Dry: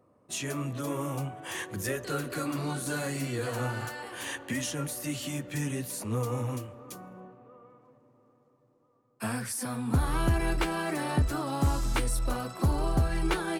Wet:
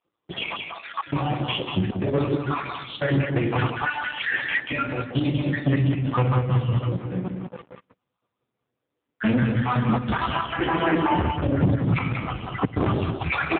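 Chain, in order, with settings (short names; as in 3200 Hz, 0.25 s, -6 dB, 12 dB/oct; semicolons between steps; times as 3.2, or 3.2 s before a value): random spectral dropouts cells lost 76%; HPF 52 Hz 6 dB/oct; shoebox room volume 390 m³, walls mixed, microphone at 0.76 m; sample leveller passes 5; 10.52–12.7 LPF 2900 Hz 24 dB/oct; high shelf 2200 Hz +4.5 dB; step gate "xxxxx.xxx.xx" 134 bpm -24 dB; low shelf 170 Hz +3 dB; echo 0.187 s -5 dB; AMR-NB 5.9 kbps 8000 Hz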